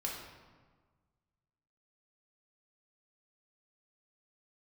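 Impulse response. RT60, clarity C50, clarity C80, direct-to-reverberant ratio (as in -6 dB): 1.5 s, 2.0 dB, 4.5 dB, -3.0 dB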